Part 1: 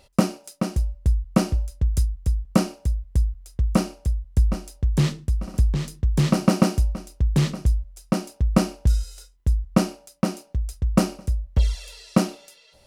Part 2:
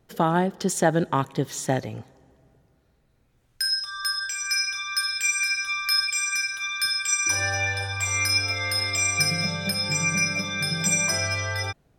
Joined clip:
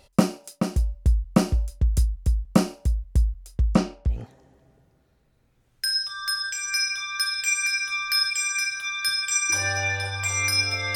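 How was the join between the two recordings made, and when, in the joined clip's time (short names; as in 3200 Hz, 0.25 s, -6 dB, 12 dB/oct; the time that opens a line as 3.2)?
part 1
3.66–4.22 LPF 9600 Hz -> 1500 Hz
4.15 switch to part 2 from 1.92 s, crossfade 0.14 s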